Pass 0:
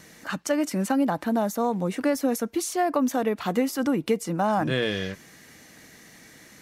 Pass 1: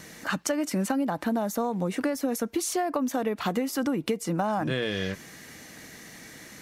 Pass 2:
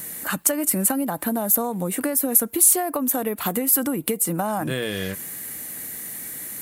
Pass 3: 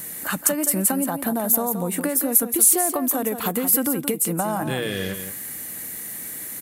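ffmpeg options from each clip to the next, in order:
-af "acompressor=threshold=-28dB:ratio=6,volume=4dB"
-af "aexciter=amount=8.7:drive=6.8:freq=8.2k,volume=2dB"
-af "aecho=1:1:173:0.355"

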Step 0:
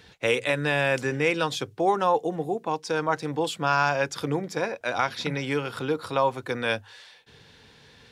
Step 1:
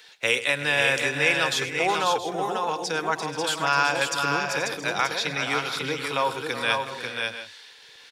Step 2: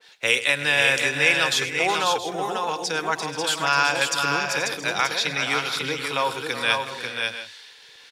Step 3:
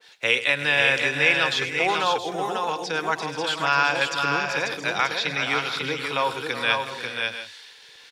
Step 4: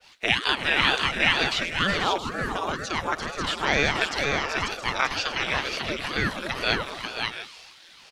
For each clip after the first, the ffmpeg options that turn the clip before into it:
-filter_complex "[0:a]tiltshelf=f=1.1k:g=-6.5,acrossover=split=320|3800[a][b][c];[a]aeval=exprs='val(0)*gte(abs(val(0)),0.00158)':c=same[d];[d][b][c]amix=inputs=3:normalize=0,aecho=1:1:101|373|481|541|672|702:0.168|0.224|0.211|0.596|0.168|0.15"
-af "adynamicequalizer=threshold=0.0282:dfrequency=1600:dqfactor=0.7:tfrequency=1600:tqfactor=0.7:attack=5:release=100:ratio=0.375:range=2:mode=boostabove:tftype=highshelf"
-filter_complex "[0:a]acrossover=split=4700[a][b];[b]acompressor=threshold=-45dB:ratio=4:attack=1:release=60[c];[a][c]amix=inputs=2:normalize=0"
-af "aeval=exprs='val(0)*sin(2*PI*540*n/s+540*0.85/2.1*sin(2*PI*2.1*n/s))':c=same,volume=1dB"

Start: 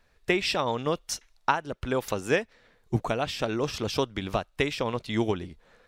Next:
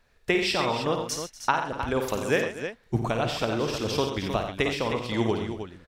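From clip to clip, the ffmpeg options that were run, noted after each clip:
-af "aecho=1:1:53|89|130|241|311:0.398|0.355|0.237|0.141|0.355"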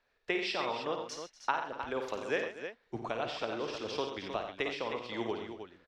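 -filter_complex "[0:a]acrossover=split=280 5900:gain=0.224 1 0.0708[a][b][c];[a][b][c]amix=inputs=3:normalize=0,volume=-7.5dB"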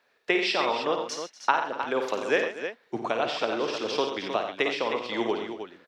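-af "highpass=190,volume=8.5dB"

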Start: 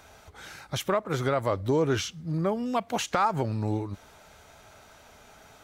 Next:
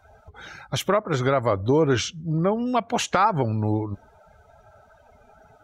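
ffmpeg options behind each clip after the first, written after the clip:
-af "afftdn=nr=21:nf=-48,volume=5dB"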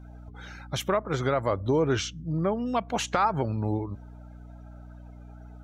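-af "aeval=exprs='val(0)+0.0112*(sin(2*PI*60*n/s)+sin(2*PI*2*60*n/s)/2+sin(2*PI*3*60*n/s)/3+sin(2*PI*4*60*n/s)/4+sin(2*PI*5*60*n/s)/5)':c=same,volume=-4.5dB"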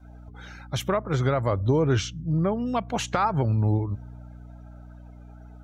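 -af "adynamicequalizer=threshold=0.00708:dfrequency=110:dqfactor=0.98:tfrequency=110:tqfactor=0.98:attack=5:release=100:ratio=0.375:range=4:mode=boostabove:tftype=bell"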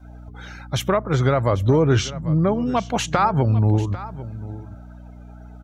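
-af "aecho=1:1:795:0.158,volume=5dB"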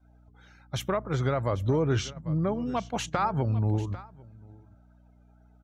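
-af "agate=range=-9dB:threshold=-28dB:ratio=16:detection=peak,volume=-8.5dB"

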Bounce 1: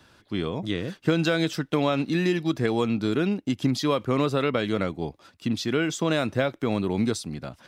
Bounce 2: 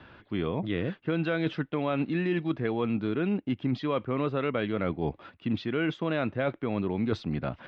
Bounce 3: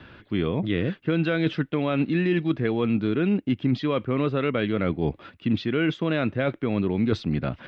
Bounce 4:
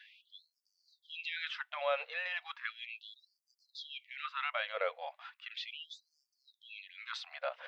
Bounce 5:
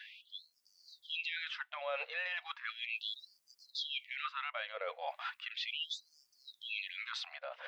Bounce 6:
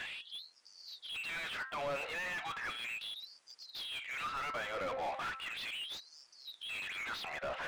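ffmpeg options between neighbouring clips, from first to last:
-af "lowpass=f=3k:w=0.5412,lowpass=f=3k:w=1.3066,areverse,acompressor=threshold=-31dB:ratio=6,areverse,volume=5.5dB"
-af "equalizer=f=860:t=o:w=1.3:g=-6,volume=6dB"
-af "afftfilt=real='re*gte(b*sr/1024,460*pow(4500/460,0.5+0.5*sin(2*PI*0.36*pts/sr)))':imag='im*gte(b*sr/1024,460*pow(4500/460,0.5+0.5*sin(2*PI*0.36*pts/sr)))':win_size=1024:overlap=0.75,volume=-4dB"
-af "areverse,acompressor=threshold=-46dB:ratio=5,areverse,alimiter=level_in=16dB:limit=-24dB:level=0:latency=1:release=400,volume=-16dB,dynaudnorm=f=130:g=9:m=5.5dB,volume=6.5dB"
-filter_complex "[0:a]bandreject=f=264.7:t=h:w=4,bandreject=f=529.4:t=h:w=4,bandreject=f=794.1:t=h:w=4,bandreject=f=1.0588k:t=h:w=4,bandreject=f=1.3235k:t=h:w=4,bandreject=f=1.5882k:t=h:w=4,bandreject=f=1.8529k:t=h:w=4,aresample=22050,aresample=44100,asplit=2[a][b];[b]highpass=f=720:p=1,volume=30dB,asoftclip=type=tanh:threshold=-27.5dB[c];[a][c]amix=inputs=2:normalize=0,lowpass=f=1.6k:p=1,volume=-6dB,volume=-2.5dB"

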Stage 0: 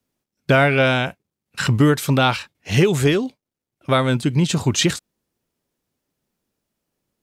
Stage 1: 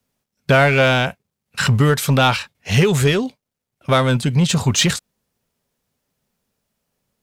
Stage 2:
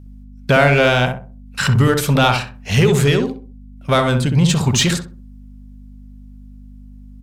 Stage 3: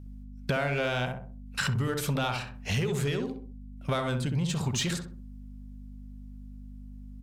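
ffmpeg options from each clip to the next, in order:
-filter_complex "[0:a]equalizer=f=320:t=o:w=0.3:g=-13,asplit=2[a][b];[b]asoftclip=type=hard:threshold=-19.5dB,volume=-3.5dB[c];[a][c]amix=inputs=2:normalize=0"
-filter_complex "[0:a]aeval=exprs='val(0)+0.0126*(sin(2*PI*50*n/s)+sin(2*PI*2*50*n/s)/2+sin(2*PI*3*50*n/s)/3+sin(2*PI*4*50*n/s)/4+sin(2*PI*5*50*n/s)/5)':c=same,asplit=2[a][b];[b]adelay=64,lowpass=f=990:p=1,volume=-3.5dB,asplit=2[c][d];[d]adelay=64,lowpass=f=990:p=1,volume=0.36,asplit=2[e][f];[f]adelay=64,lowpass=f=990:p=1,volume=0.36,asplit=2[g][h];[h]adelay=64,lowpass=f=990:p=1,volume=0.36,asplit=2[i][j];[j]adelay=64,lowpass=f=990:p=1,volume=0.36[k];[c][e][g][i][k]amix=inputs=5:normalize=0[l];[a][l]amix=inputs=2:normalize=0"
-af "acompressor=threshold=-22dB:ratio=5,volume=-5dB"

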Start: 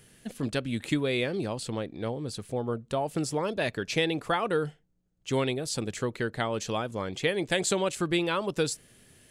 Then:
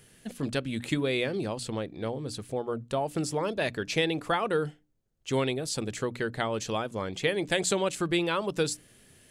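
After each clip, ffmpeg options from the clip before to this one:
-af "bandreject=f=60:t=h:w=6,bandreject=f=120:t=h:w=6,bandreject=f=180:t=h:w=6,bandreject=f=240:t=h:w=6,bandreject=f=300:t=h:w=6"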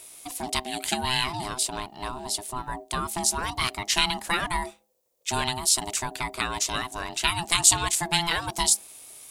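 -af "aeval=exprs='val(0)*sin(2*PI*510*n/s)':c=same,crystalizer=i=6.5:c=0"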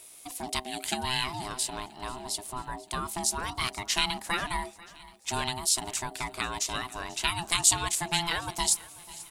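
-af "aecho=1:1:489|978|1467|1956:0.0944|0.0538|0.0307|0.0175,volume=-4dB"

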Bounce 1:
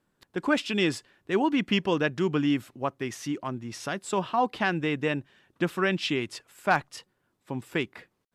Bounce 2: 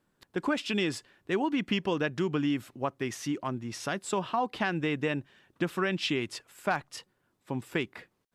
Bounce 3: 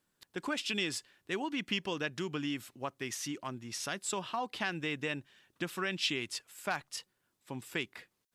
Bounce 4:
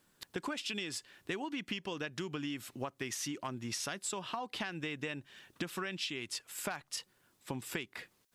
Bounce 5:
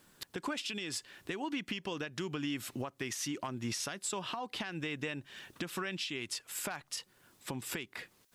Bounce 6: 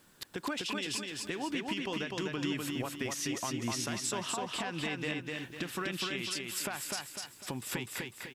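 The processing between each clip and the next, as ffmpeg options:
-af "acompressor=threshold=-25dB:ratio=4"
-af "highshelf=f=2.1k:g=12,volume=-8.5dB"
-af "acompressor=threshold=-44dB:ratio=10,volume=8.5dB"
-af "alimiter=level_in=10dB:limit=-24dB:level=0:latency=1:release=340,volume=-10dB,volume=7dB"
-af "aecho=1:1:250|500|750|1000|1250:0.708|0.29|0.119|0.0488|0.02,volume=1dB"

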